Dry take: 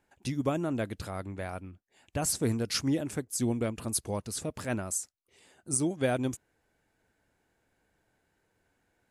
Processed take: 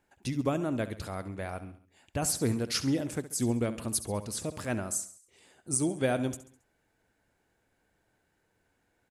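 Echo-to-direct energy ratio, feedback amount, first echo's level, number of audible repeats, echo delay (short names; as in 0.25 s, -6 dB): -13.0 dB, 47%, -14.0 dB, 4, 68 ms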